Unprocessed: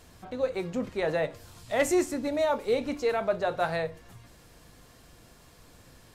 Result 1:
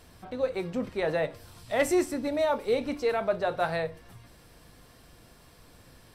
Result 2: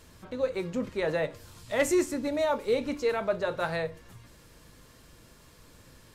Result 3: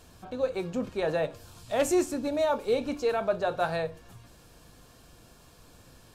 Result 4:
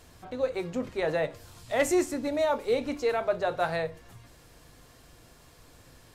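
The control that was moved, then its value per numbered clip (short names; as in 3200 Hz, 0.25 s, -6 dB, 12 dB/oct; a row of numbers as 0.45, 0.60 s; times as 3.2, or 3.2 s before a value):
notch, frequency: 6800, 730, 2000, 200 Hz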